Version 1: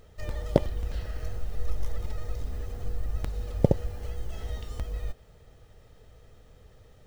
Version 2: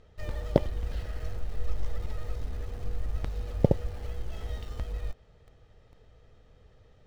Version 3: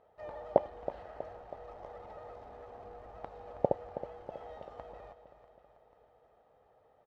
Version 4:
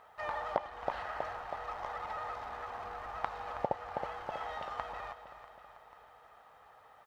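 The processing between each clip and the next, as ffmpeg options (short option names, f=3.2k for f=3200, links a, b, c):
-filter_complex "[0:a]lowpass=5.1k,asplit=2[a][b];[b]acrusher=bits=6:mix=0:aa=0.000001,volume=-9.5dB[c];[a][c]amix=inputs=2:normalize=0,volume=-3.5dB"
-af "bandpass=f=770:t=q:w=2.8:csg=0,aecho=1:1:322|644|966|1288|1610|1932:0.237|0.135|0.077|0.0439|0.025|0.0143,volume=6dB"
-af "alimiter=limit=-17.5dB:level=0:latency=1:release=397,lowshelf=f=770:t=q:w=1.5:g=-12.5,volume=14dB"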